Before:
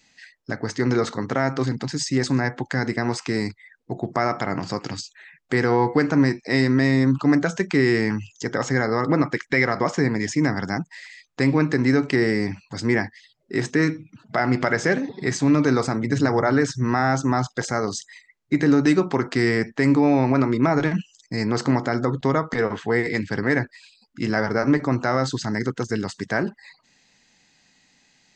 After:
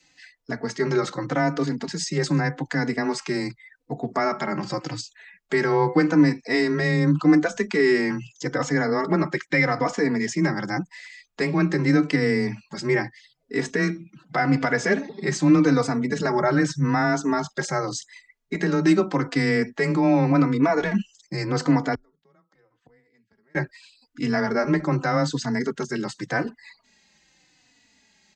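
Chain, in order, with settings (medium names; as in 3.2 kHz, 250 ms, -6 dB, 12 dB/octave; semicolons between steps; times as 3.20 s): 21.94–23.55 s: inverted gate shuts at -23 dBFS, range -39 dB; frequency shift +18 Hz; endless flanger 3.4 ms -0.84 Hz; trim +2 dB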